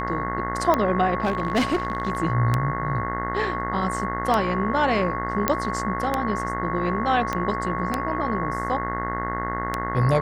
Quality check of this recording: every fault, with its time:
mains buzz 60 Hz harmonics 35 −30 dBFS
scratch tick 33 1/3 rpm −8 dBFS
whistle 1,100 Hz −28 dBFS
0:01.22–0:02.20: clipping −17 dBFS
0:05.48: click −4 dBFS
0:07.33: click −12 dBFS

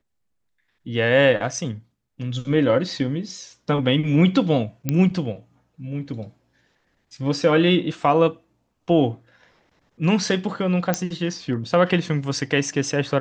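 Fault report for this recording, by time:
0:04.89: click −8 dBFS
0:10.94: click −6 dBFS

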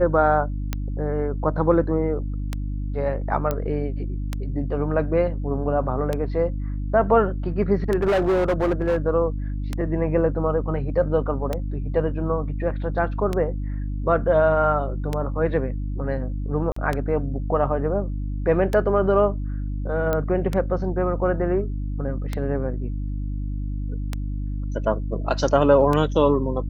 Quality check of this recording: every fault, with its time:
mains hum 50 Hz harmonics 6 −27 dBFS
scratch tick 33 1/3 rpm −11 dBFS
0:03.51: click −11 dBFS
0:07.95–0:08.98: clipping −16.5 dBFS
0:16.72–0:16.76: drop-out 44 ms
0:20.13: click −11 dBFS

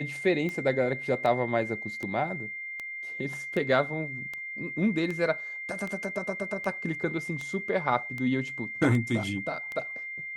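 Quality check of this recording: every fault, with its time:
scratch tick 78 rpm −22 dBFS
whistle 2,100 Hz −35 dBFS

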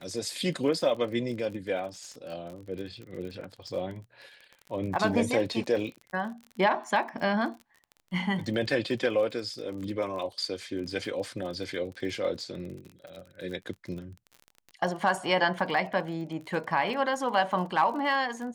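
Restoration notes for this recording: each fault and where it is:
surface crackle 38 per second −37 dBFS

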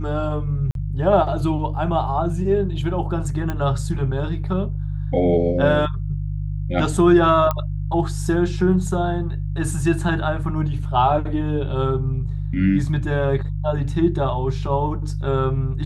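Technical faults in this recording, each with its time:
mains hum 50 Hz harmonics 3 −25 dBFS
0:00.71–0:00.75: drop-out 42 ms
0:03.50: click −13 dBFS
0:07.51: click −9 dBFS

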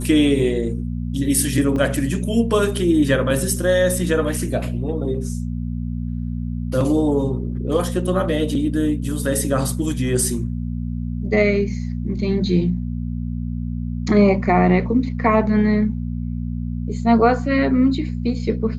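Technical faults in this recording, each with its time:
mains hum 60 Hz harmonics 4 −25 dBFS
0:01.76: drop-out 3.2 ms

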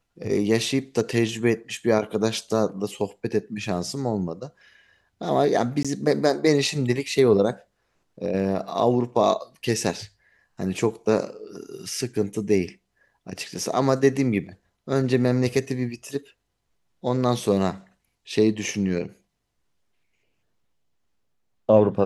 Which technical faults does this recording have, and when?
0:05.83–0:05.85: drop-out 16 ms

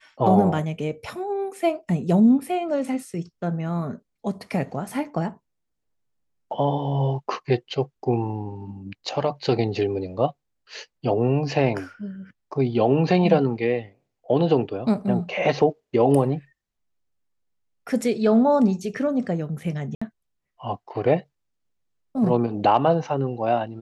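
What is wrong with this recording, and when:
0:19.95–0:20.02: drop-out 65 ms

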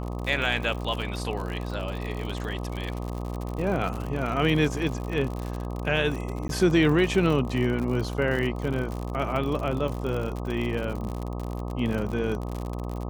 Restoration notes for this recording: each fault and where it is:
mains buzz 60 Hz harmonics 21 −32 dBFS
surface crackle 70 per second −30 dBFS
0:06.48–0:06.49: drop-out 12 ms

